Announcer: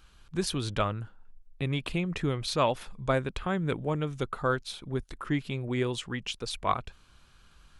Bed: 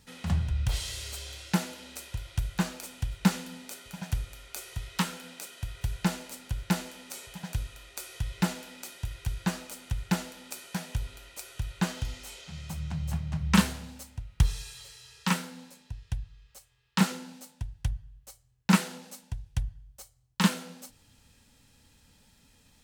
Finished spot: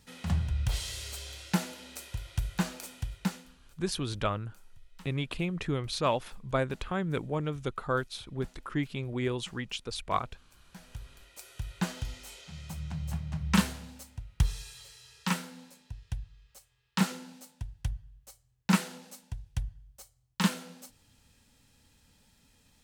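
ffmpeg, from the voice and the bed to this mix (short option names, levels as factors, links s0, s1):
-filter_complex "[0:a]adelay=3450,volume=0.794[s0];[1:a]volume=10.6,afade=t=out:st=2.86:d=0.73:silence=0.0668344,afade=t=in:st=10.58:d=1.18:silence=0.0794328[s1];[s0][s1]amix=inputs=2:normalize=0"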